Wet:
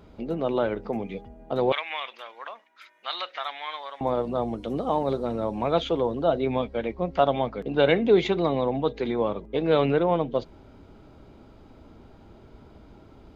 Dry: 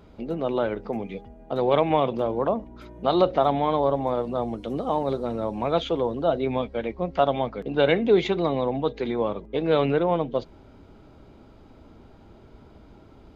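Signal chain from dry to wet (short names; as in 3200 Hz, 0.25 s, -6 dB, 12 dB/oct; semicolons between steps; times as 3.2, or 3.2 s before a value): 1.72–4.01 resonant high-pass 1900 Hz, resonance Q 2.1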